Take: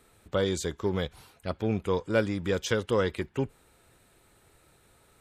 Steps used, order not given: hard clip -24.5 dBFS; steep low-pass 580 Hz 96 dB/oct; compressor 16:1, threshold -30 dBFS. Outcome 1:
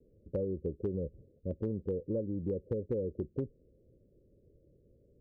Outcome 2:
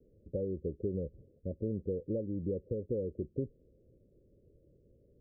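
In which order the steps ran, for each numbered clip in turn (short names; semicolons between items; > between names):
steep low-pass > compressor > hard clip; compressor > hard clip > steep low-pass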